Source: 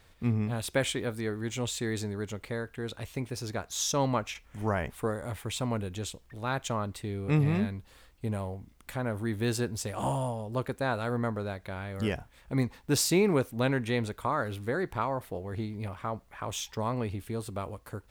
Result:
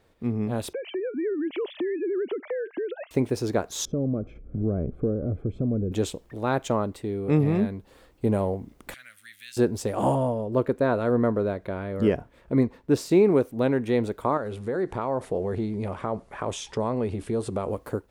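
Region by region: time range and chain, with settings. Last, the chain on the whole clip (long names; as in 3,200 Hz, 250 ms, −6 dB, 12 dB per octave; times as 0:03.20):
0:00.73–0:03.11: three sine waves on the formant tracks + downward compressor 8 to 1, threshold −40 dBFS
0:03.85–0:05.92: moving average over 47 samples + downward compressor 2.5 to 1, threshold −42 dBFS + spectral tilt −2.5 dB per octave
0:08.94–0:09.57: inverse Chebyshev high-pass filter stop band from 1,000 Hz + downward compressor 1.5 to 1, threshold −48 dBFS
0:10.15–0:13.11: high-shelf EQ 4,200 Hz −8 dB + notch filter 800 Hz, Q 7.5
0:14.37–0:17.71: notch filter 300 Hz, Q 7.2 + bad sample-rate conversion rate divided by 2×, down none, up filtered + downward compressor 2.5 to 1, threshold −37 dBFS
whole clip: parametric band 380 Hz +13 dB 2.6 octaves; automatic gain control; level −8.5 dB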